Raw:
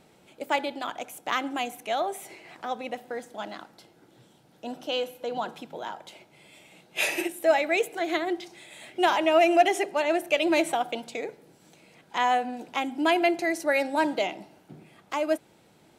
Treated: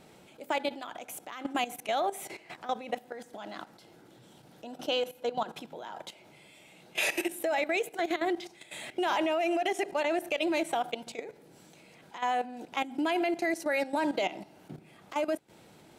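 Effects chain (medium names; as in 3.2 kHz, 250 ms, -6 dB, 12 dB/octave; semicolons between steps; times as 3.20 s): in parallel at -0.5 dB: compression 5:1, threshold -37 dBFS, peak gain reduction 20.5 dB; on the sum: peak limiter -16.5 dBFS, peak gain reduction 9 dB; level held to a coarse grid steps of 14 dB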